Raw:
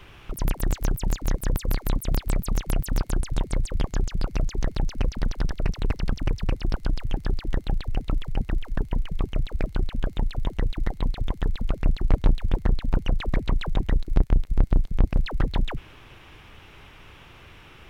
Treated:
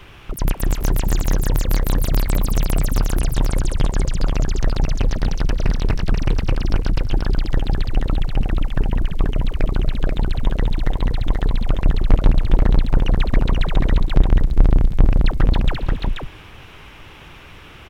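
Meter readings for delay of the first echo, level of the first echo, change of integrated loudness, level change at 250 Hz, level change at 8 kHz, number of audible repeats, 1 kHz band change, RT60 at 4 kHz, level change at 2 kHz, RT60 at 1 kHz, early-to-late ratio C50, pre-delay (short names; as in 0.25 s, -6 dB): 0.271 s, -15.5 dB, +7.0 dB, +7.0 dB, +7.0 dB, 3, +7.0 dB, none, +7.0 dB, none, none, none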